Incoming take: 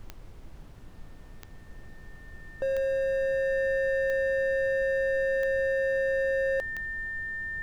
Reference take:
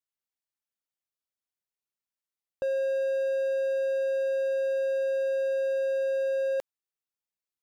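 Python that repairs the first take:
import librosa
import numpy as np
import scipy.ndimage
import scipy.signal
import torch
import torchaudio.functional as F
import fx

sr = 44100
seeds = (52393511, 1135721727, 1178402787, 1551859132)

y = fx.fix_declick_ar(x, sr, threshold=10.0)
y = fx.notch(y, sr, hz=1800.0, q=30.0)
y = fx.noise_reduce(y, sr, print_start_s=0.49, print_end_s=0.99, reduce_db=30.0)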